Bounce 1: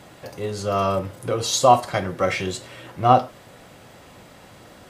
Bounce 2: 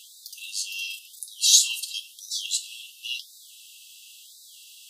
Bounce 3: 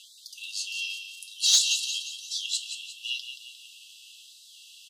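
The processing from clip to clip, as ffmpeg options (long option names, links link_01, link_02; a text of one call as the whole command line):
ffmpeg -i in.wav -af "afftfilt=real='re*(1-between(b*sr/4096,940,2600))':imag='im*(1-between(b*sr/4096,940,2600))':win_size=4096:overlap=0.75,highshelf=frequency=6800:gain=5.5,afftfilt=real='re*gte(b*sr/1024,950*pow(3600/950,0.5+0.5*sin(2*PI*0.95*pts/sr)))':imag='im*gte(b*sr/1024,950*pow(3600/950,0.5+0.5*sin(2*PI*0.95*pts/sr)))':win_size=1024:overlap=0.75,volume=5.5dB" out.wav
ffmpeg -i in.wav -af "bandpass=frequency=2700:width_type=q:width=0.56:csg=0,aecho=1:1:177|354|531|708|885:0.355|0.17|0.0817|0.0392|0.0188,asoftclip=type=tanh:threshold=-9.5dB" out.wav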